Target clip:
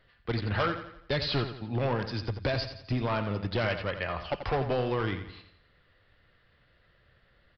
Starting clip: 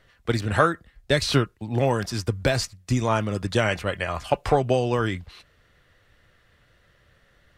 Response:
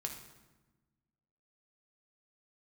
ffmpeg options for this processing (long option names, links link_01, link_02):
-af "aresample=11025,asoftclip=type=hard:threshold=-18.5dB,aresample=44100,aecho=1:1:86|172|258|344|430:0.316|0.142|0.064|0.0288|0.013,volume=-5dB"